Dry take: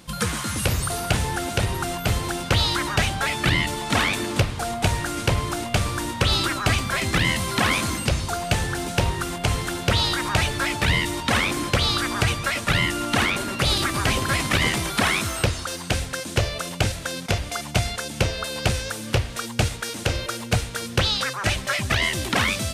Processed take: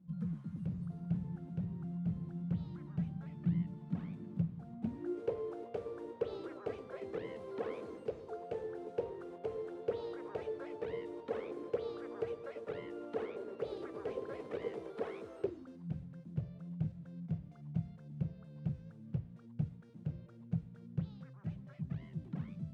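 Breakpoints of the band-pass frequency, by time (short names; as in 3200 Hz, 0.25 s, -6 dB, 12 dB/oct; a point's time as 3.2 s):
band-pass, Q 10
4.71 s 170 Hz
5.23 s 450 Hz
15.38 s 450 Hz
15.93 s 160 Hz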